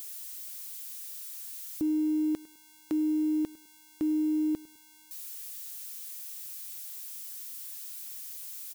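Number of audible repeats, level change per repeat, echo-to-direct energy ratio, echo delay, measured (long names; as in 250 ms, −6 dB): 2, −10.0 dB, −21.5 dB, 103 ms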